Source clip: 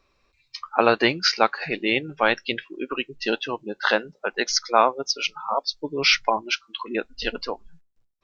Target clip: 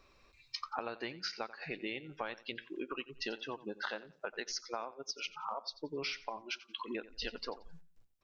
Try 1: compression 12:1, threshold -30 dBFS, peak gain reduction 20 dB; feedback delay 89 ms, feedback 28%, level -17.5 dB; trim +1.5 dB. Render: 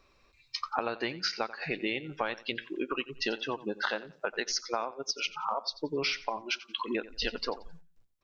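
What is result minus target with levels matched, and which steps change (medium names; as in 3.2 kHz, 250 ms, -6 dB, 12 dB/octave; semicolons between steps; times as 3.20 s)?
compression: peak gain reduction -8 dB
change: compression 12:1, threshold -38.5 dBFS, peak gain reduction 27.5 dB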